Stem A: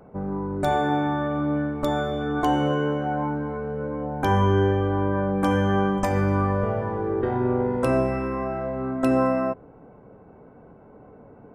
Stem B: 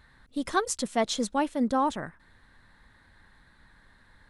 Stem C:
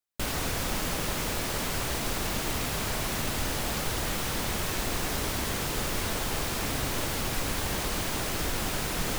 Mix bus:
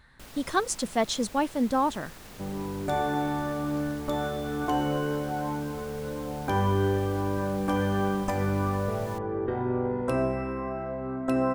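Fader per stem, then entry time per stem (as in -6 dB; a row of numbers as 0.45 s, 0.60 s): -5.0 dB, +0.5 dB, -16.5 dB; 2.25 s, 0.00 s, 0.00 s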